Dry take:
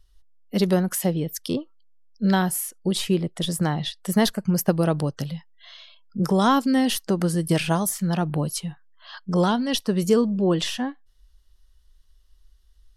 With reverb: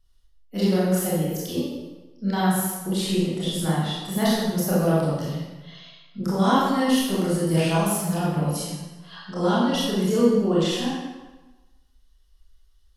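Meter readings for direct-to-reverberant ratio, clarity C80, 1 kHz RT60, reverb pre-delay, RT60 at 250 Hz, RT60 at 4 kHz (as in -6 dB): -8.5 dB, 1.5 dB, 1.2 s, 23 ms, 1.2 s, 0.95 s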